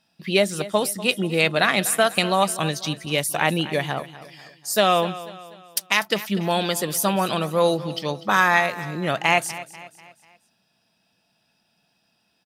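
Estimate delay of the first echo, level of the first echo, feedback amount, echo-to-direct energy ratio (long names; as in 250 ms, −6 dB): 245 ms, −16.0 dB, 45%, −15.0 dB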